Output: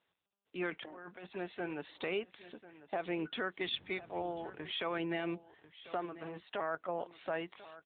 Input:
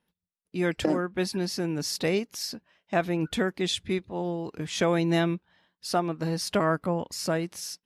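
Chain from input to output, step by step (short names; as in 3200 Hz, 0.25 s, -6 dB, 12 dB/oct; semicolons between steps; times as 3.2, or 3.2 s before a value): HPF 460 Hz 12 dB/oct; 6.05–6.9 level quantiser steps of 10 dB; limiter -22 dBFS, peak gain reduction 11 dB; 0.7–1.33 negative-ratio compressor -43 dBFS, ratio -1; phaser 0.36 Hz, delay 1.6 ms, feedback 32%; 3.7–4.68 added noise brown -47 dBFS; echo 1.044 s -16.5 dB; on a send at -16 dB: reverb RT60 0.10 s, pre-delay 3 ms; on the sum: gain -2.5 dB; AMR-NB 10.2 kbps 8000 Hz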